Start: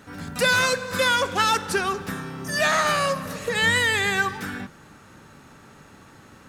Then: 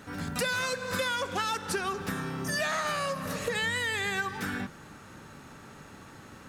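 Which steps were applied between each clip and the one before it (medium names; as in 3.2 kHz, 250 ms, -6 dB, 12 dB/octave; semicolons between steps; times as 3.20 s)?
compression 6:1, threshold -28 dBFS, peak gain reduction 11 dB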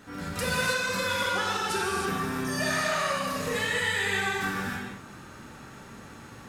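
gated-style reverb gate 350 ms flat, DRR -5.5 dB; trim -3.5 dB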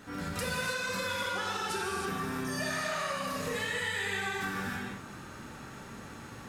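compression 2.5:1, threshold -33 dBFS, peak gain reduction 7.5 dB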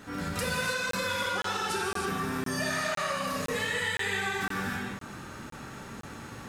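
crackling interface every 0.51 s, samples 1024, zero, from 0.91 s; trim +3 dB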